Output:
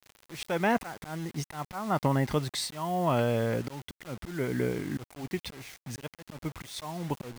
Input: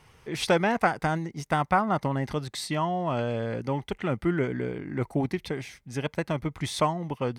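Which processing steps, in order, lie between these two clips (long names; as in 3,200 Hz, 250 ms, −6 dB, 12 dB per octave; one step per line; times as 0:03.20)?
volume swells 341 ms
bit-depth reduction 8 bits, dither none
level +2 dB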